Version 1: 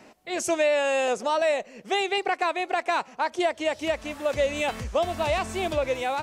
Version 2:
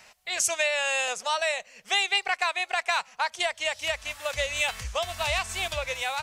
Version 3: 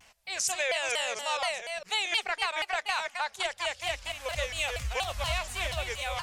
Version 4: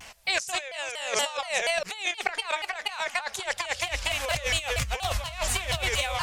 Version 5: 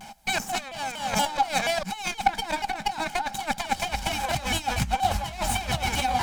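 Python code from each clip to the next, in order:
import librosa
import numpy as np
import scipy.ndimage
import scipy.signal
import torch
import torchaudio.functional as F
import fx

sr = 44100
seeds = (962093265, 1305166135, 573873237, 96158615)

y1 = fx.tone_stack(x, sr, knobs='10-0-10')
y1 = fx.transient(y1, sr, attack_db=2, sustain_db=-3)
y1 = y1 * librosa.db_to_amplitude(7.0)
y2 = fx.reverse_delay(y1, sr, ms=229, wet_db=-4.5)
y2 = fx.low_shelf(y2, sr, hz=99.0, db=10.0)
y2 = fx.vibrato_shape(y2, sr, shape='saw_down', rate_hz=4.2, depth_cents=250.0)
y2 = y2 * librosa.db_to_amplitude(-5.0)
y3 = fx.over_compress(y2, sr, threshold_db=-36.0, ratio=-0.5)
y3 = y3 * librosa.db_to_amplitude(7.5)
y4 = fx.lower_of_two(y3, sr, delay_ms=1.3)
y4 = fx.small_body(y4, sr, hz=(200.0, 800.0), ring_ms=45, db=17)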